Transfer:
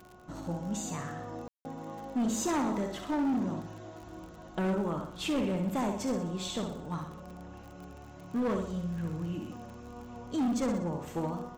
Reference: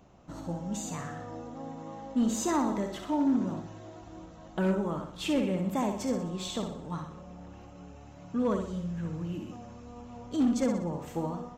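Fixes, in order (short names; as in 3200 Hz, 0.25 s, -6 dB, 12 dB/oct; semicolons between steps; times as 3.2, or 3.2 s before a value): clip repair -26 dBFS; de-click; de-hum 364.1 Hz, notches 4; room tone fill 1.48–1.65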